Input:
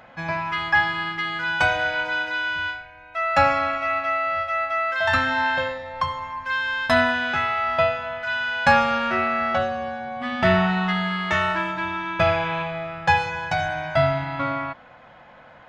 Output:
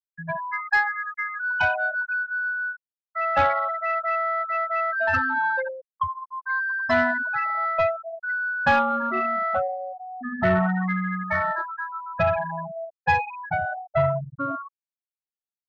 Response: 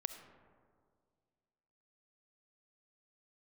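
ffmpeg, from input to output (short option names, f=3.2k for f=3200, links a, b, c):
-af "afftfilt=real='re*gte(hypot(re,im),0.224)':imag='im*gte(hypot(re,im),0.224)':win_size=1024:overlap=0.75,asoftclip=type=tanh:threshold=-11.5dB"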